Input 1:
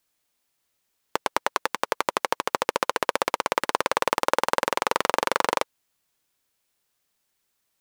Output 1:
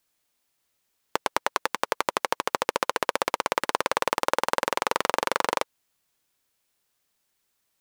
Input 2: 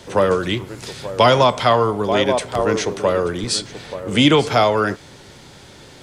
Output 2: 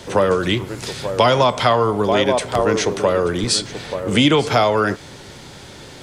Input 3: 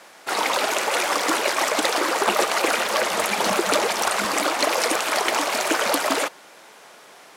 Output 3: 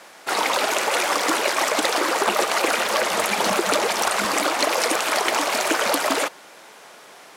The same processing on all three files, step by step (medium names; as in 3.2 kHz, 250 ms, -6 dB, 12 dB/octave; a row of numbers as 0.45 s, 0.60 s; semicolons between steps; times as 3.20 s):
compression 2:1, threshold -19 dBFS; peak normalisation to -1.5 dBFS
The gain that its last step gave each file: 0.0 dB, +4.0 dB, +2.0 dB